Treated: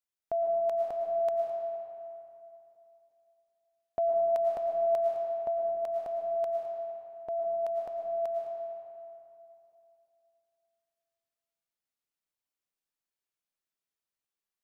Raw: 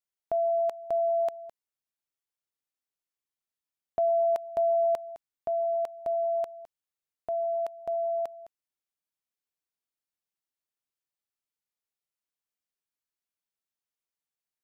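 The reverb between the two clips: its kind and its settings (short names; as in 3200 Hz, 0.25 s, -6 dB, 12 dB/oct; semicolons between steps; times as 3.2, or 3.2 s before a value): digital reverb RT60 2.9 s, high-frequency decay 0.6×, pre-delay 70 ms, DRR 0 dB; gain -3 dB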